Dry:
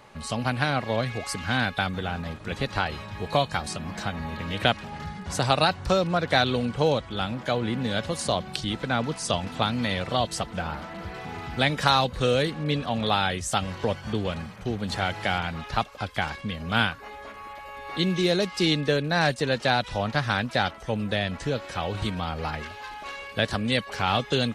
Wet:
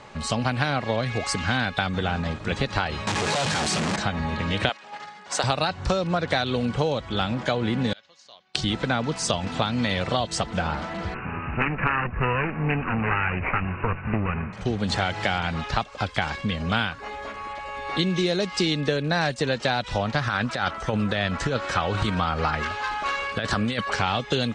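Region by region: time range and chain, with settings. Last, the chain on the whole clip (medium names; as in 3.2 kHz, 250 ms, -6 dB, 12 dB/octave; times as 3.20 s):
3.07–3.96 s: one-bit comparator + high-pass 120 Hz
4.69–5.44 s: high-pass 540 Hz + gate -40 dBFS, range -7 dB
7.93–8.55 s: band-pass filter 6.4 kHz, Q 3.8 + distance through air 360 m
11.14–14.53 s: comb filter that takes the minimum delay 0.77 ms + careless resampling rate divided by 8×, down none, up filtered
20.21–23.96 s: compressor with a negative ratio -27 dBFS, ratio -0.5 + peaking EQ 1.3 kHz +7.5 dB 0.67 oct
whole clip: steep low-pass 8.5 kHz 36 dB/octave; compression, threshold -26 dBFS; trim +6 dB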